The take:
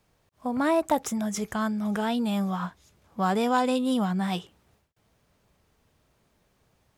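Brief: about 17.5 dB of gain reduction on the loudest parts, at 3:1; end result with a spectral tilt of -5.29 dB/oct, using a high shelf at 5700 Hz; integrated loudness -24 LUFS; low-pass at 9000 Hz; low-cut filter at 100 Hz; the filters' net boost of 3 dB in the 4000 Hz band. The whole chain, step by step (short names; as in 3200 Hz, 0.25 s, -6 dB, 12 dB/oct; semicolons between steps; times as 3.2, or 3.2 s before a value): HPF 100 Hz; LPF 9000 Hz; bell 4000 Hz +6.5 dB; high shelf 5700 Hz -7.5 dB; compressor 3:1, threshold -44 dBFS; gain +18 dB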